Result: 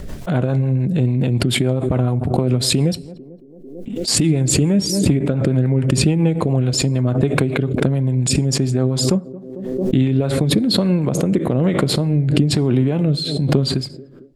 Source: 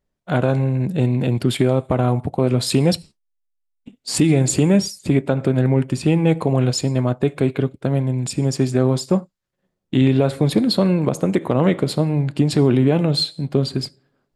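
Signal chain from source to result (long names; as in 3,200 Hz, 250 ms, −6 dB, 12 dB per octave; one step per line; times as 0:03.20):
low-shelf EQ 240 Hz +6.5 dB
feedback echo with a band-pass in the loop 223 ms, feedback 51%, band-pass 370 Hz, level −23 dB
downward compressor 2.5 to 1, threshold −24 dBFS, peak gain reduction 11.5 dB
rotating-speaker cabinet horn 7 Hz, later 1.1 Hz, at 0:09.62
background raised ahead of every attack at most 41 dB per second
level +7 dB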